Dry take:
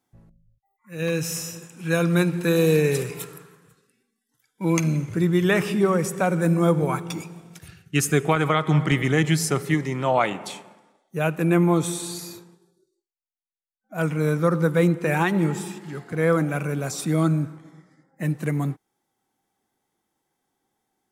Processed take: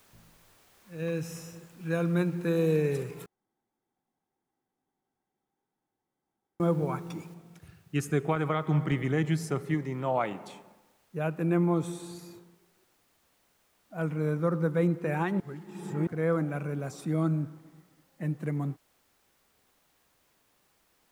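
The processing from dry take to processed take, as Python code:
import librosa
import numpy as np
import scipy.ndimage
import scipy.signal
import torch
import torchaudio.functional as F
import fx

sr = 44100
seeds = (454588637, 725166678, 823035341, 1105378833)

y = fx.noise_floor_step(x, sr, seeds[0], at_s=7.34, before_db=-47, after_db=-55, tilt_db=0.0)
y = fx.edit(y, sr, fx.room_tone_fill(start_s=3.26, length_s=3.34),
    fx.reverse_span(start_s=15.4, length_s=0.67), tone=tone)
y = fx.high_shelf(y, sr, hz=2200.0, db=-11.0)
y = y * librosa.db_to_amplitude(-6.5)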